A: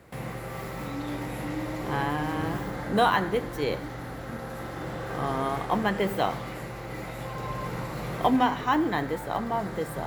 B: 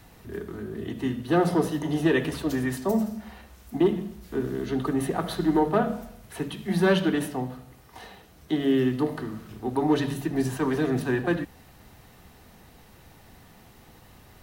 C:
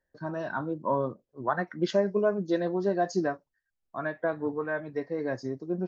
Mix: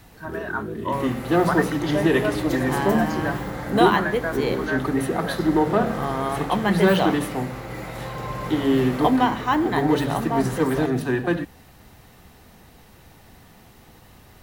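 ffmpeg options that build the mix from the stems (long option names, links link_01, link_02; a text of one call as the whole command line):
ffmpeg -i stem1.wav -i stem2.wav -i stem3.wav -filter_complex "[0:a]adelay=800,volume=3dB[link_01];[1:a]volume=2.5dB[link_02];[2:a]equalizer=frequency=1900:width_type=o:width=2.3:gain=14,volume=-5.5dB[link_03];[link_01][link_02][link_03]amix=inputs=3:normalize=0" out.wav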